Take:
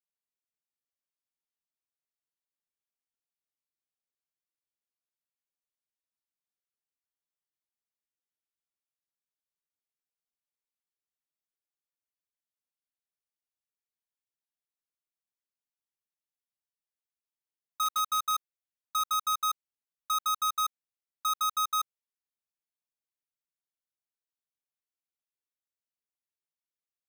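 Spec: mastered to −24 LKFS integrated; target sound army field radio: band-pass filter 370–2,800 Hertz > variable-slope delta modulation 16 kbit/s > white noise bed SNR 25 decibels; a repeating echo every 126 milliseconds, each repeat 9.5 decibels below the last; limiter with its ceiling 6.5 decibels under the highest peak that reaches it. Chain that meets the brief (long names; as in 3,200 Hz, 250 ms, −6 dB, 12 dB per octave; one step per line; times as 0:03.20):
brickwall limiter −33.5 dBFS
band-pass filter 370–2,800 Hz
repeating echo 126 ms, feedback 33%, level −9.5 dB
variable-slope delta modulation 16 kbit/s
white noise bed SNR 25 dB
level +14.5 dB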